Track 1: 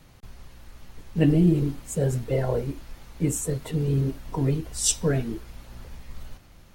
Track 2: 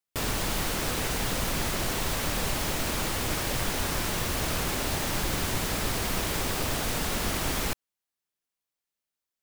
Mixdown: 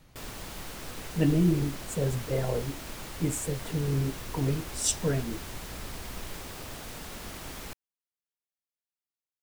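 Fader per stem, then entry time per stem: −4.5, −12.0 decibels; 0.00, 0.00 seconds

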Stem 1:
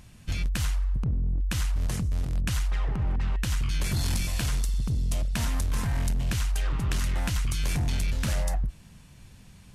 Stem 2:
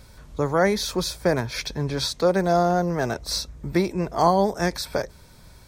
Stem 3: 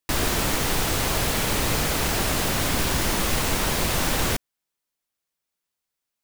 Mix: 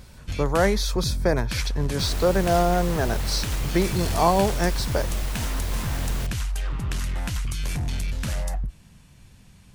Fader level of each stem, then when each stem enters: −0.5, −1.0, −11.5 decibels; 0.00, 0.00, 1.90 seconds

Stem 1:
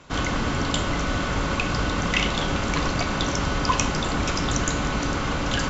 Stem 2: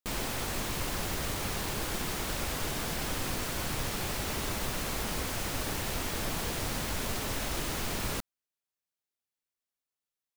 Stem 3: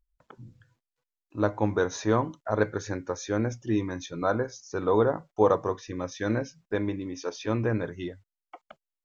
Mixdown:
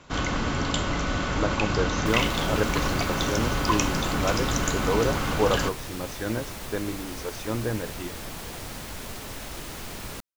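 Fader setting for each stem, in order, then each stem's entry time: −2.0, −3.5, −2.0 decibels; 0.00, 2.00, 0.00 seconds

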